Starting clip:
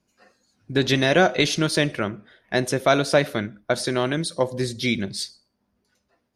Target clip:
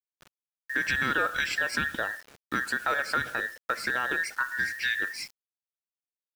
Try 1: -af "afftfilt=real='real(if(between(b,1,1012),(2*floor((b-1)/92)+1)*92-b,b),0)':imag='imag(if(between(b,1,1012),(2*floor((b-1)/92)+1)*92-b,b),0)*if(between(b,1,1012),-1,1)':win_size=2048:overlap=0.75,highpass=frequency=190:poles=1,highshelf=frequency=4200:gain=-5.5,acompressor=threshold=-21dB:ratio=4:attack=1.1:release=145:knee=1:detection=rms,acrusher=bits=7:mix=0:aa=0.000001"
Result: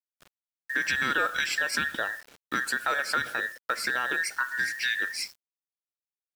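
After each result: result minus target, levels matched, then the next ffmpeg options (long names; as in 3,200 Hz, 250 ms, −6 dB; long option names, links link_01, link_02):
125 Hz band −5.5 dB; 8,000 Hz band +4.5 dB
-af "afftfilt=real='real(if(between(b,1,1012),(2*floor((b-1)/92)+1)*92-b,b),0)':imag='imag(if(between(b,1,1012),(2*floor((b-1)/92)+1)*92-b,b),0)*if(between(b,1,1012),-1,1)':win_size=2048:overlap=0.75,highpass=frequency=59:poles=1,highshelf=frequency=4200:gain=-5.5,acompressor=threshold=-21dB:ratio=4:attack=1.1:release=145:knee=1:detection=rms,acrusher=bits=7:mix=0:aa=0.000001"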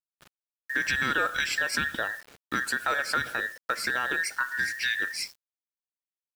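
8,000 Hz band +4.5 dB
-af "afftfilt=real='real(if(between(b,1,1012),(2*floor((b-1)/92)+1)*92-b,b),0)':imag='imag(if(between(b,1,1012),(2*floor((b-1)/92)+1)*92-b,b),0)*if(between(b,1,1012),-1,1)':win_size=2048:overlap=0.75,highpass=frequency=59:poles=1,highshelf=frequency=4200:gain=-13.5,acompressor=threshold=-21dB:ratio=4:attack=1.1:release=145:knee=1:detection=rms,acrusher=bits=7:mix=0:aa=0.000001"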